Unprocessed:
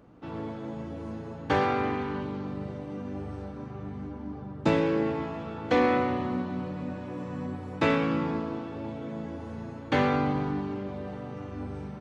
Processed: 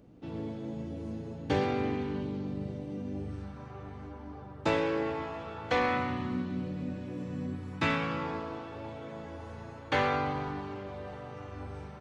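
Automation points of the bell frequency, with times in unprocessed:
bell -11.5 dB 1.5 oct
3.22 s 1200 Hz
3.73 s 200 Hz
5.48 s 200 Hz
6.66 s 980 Hz
7.45 s 980 Hz
8.25 s 220 Hz

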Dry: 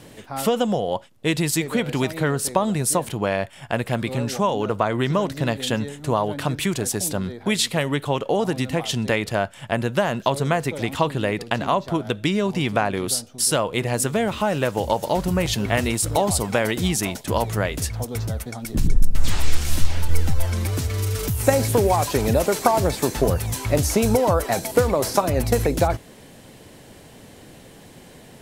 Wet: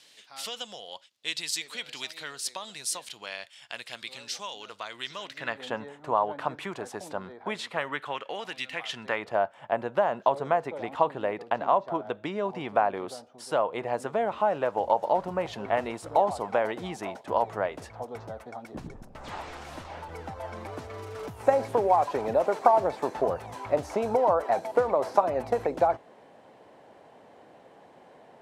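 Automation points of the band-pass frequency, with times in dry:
band-pass, Q 1.5
5.15 s 4300 Hz
5.66 s 930 Hz
7.59 s 930 Hz
8.61 s 2900 Hz
9.33 s 790 Hz

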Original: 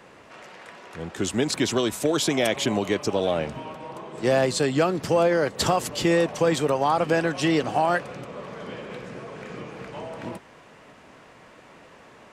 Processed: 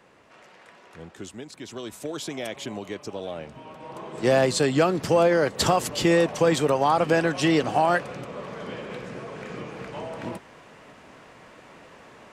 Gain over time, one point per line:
0.99 s -7 dB
1.52 s -18 dB
1.94 s -10 dB
3.49 s -10 dB
4.05 s +1 dB

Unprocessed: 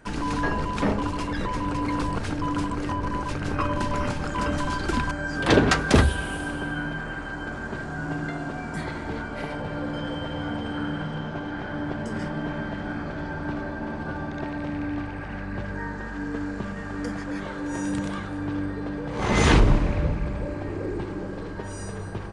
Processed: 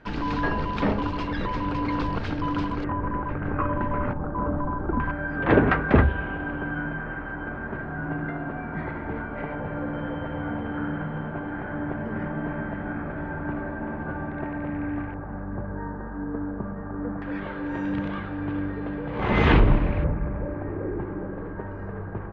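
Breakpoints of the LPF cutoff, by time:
LPF 24 dB/oct
4400 Hz
from 2.84 s 1900 Hz
from 4.13 s 1200 Hz
from 5 s 2200 Hz
from 15.14 s 1300 Hz
from 17.22 s 3100 Hz
from 20.04 s 1800 Hz

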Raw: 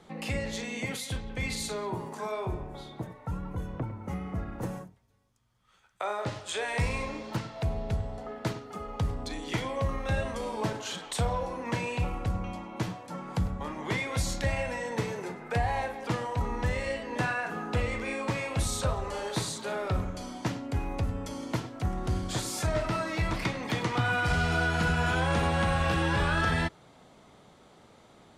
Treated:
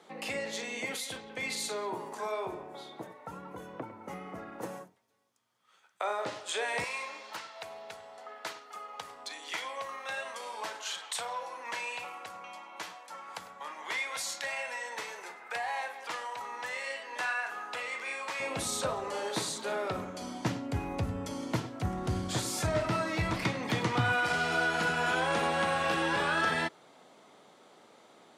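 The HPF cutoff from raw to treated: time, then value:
340 Hz
from 6.84 s 910 Hz
from 18.4 s 240 Hz
from 20.22 s 90 Hz
from 24.12 s 290 Hz

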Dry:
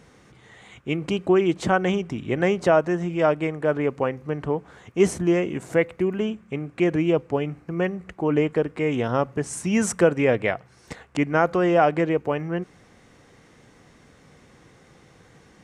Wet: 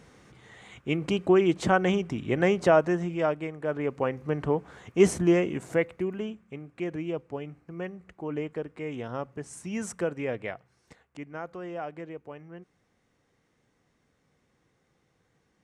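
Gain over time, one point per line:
2.9 s -2 dB
3.52 s -9.5 dB
4.28 s -1 dB
5.3 s -1 dB
6.63 s -11.5 dB
10.55 s -11.5 dB
11.04 s -18 dB

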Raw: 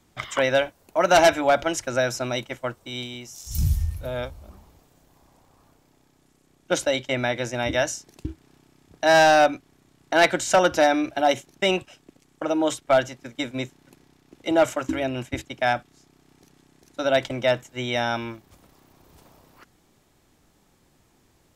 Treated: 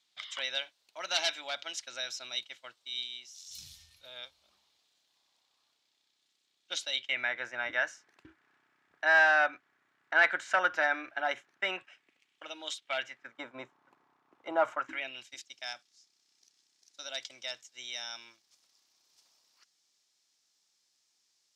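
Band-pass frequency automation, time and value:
band-pass, Q 2.5
6.9 s 3900 Hz
7.34 s 1600 Hz
11.75 s 1600 Hz
12.72 s 4100 Hz
13.43 s 1100 Hz
14.72 s 1100 Hz
15.31 s 5200 Hz

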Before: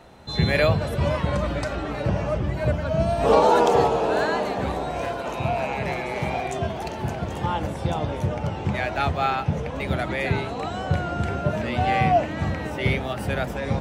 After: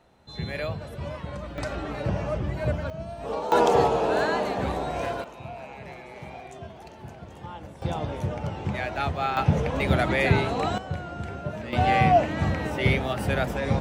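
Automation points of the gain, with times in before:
-11.5 dB
from 1.58 s -3.5 dB
from 2.9 s -14 dB
from 3.52 s -1.5 dB
from 5.24 s -14 dB
from 7.82 s -4 dB
from 9.37 s +3 dB
from 10.78 s -8.5 dB
from 11.73 s +0.5 dB

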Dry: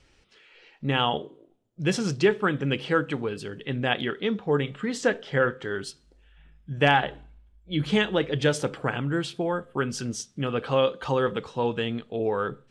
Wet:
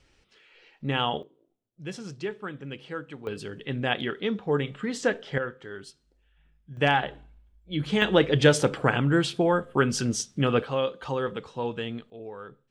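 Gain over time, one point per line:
-2.5 dB
from 1.23 s -12 dB
from 3.27 s -1.5 dB
from 5.38 s -9 dB
from 6.77 s -2.5 dB
from 8.02 s +4.5 dB
from 10.64 s -4.5 dB
from 12.1 s -14 dB

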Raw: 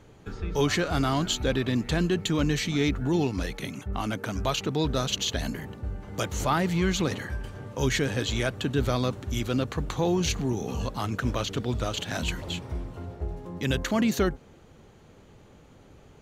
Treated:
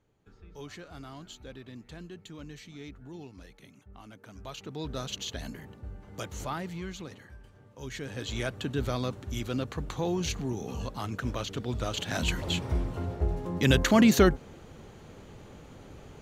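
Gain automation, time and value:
4.16 s -19.5 dB
4.98 s -8.5 dB
6.38 s -8.5 dB
7.13 s -16.5 dB
7.79 s -16.5 dB
8.4 s -5 dB
11.6 s -5 dB
12.71 s +4.5 dB

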